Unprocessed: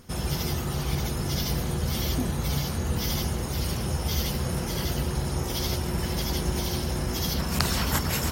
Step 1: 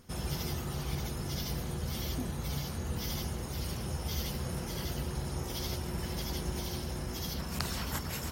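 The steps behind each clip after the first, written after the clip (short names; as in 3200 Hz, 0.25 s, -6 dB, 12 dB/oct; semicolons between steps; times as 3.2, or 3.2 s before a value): vocal rider 2 s; gain -8.5 dB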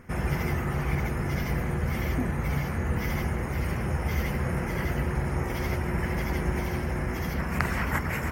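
resonant high shelf 2800 Hz -10.5 dB, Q 3; gain +8 dB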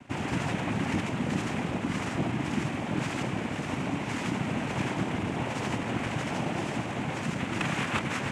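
noise vocoder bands 4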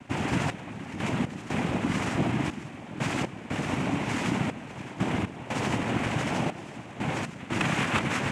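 step gate "xx..x.xx" 60 bpm -12 dB; gain +3 dB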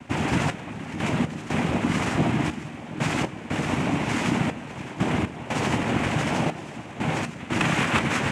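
resonator 78 Hz, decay 0.19 s, mix 50%; gain +7 dB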